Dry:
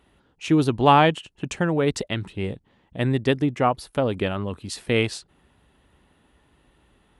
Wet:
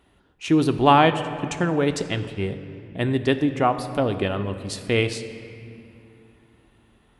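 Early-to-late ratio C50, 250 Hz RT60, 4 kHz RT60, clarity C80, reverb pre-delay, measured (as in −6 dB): 11.0 dB, 3.6 s, 1.8 s, 11.5 dB, 3 ms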